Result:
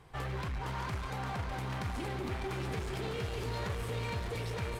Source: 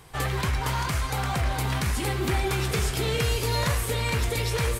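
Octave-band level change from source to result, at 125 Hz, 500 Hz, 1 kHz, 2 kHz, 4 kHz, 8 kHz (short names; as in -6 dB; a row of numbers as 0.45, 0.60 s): -10.5, -9.5, -9.5, -11.5, -14.0, -19.0 dB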